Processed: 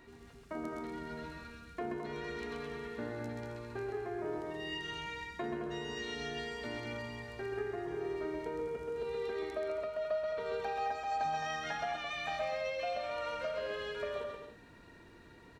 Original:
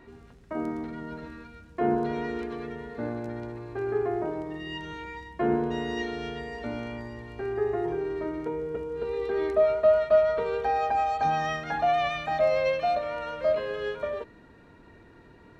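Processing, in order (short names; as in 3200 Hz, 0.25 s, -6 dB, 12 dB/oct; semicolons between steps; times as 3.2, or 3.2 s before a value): high shelf 2500 Hz +10.5 dB; compressor, threshold -29 dBFS, peak gain reduction 13 dB; bouncing-ball echo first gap 0.13 s, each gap 0.65×, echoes 5; gain -7 dB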